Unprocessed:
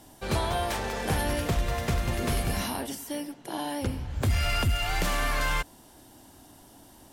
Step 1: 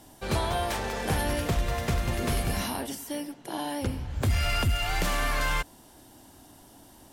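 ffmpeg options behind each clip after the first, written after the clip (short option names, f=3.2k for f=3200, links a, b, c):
-af anull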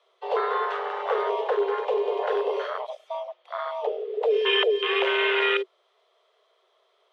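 -af "afwtdn=0.0355,afreqshift=360,lowpass=f=3.2k:t=q:w=3.5,volume=2dB"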